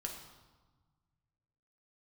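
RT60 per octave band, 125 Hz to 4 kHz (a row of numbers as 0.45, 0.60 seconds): 2.5, 1.8, 1.2, 1.4, 1.0, 0.95 seconds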